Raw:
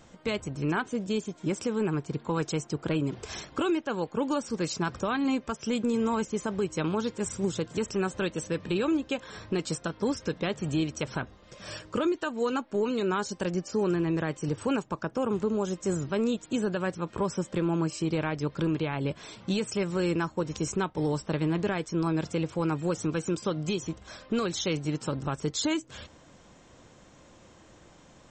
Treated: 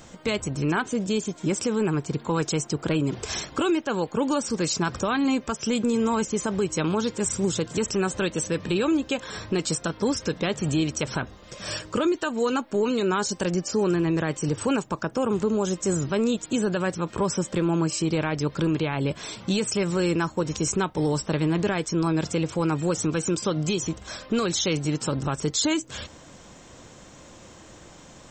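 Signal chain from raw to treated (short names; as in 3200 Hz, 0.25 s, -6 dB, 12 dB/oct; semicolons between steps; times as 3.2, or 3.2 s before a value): high shelf 6100 Hz +8 dB; in parallel at +1.5 dB: limiter -26.5 dBFS, peak gain reduction 10.5 dB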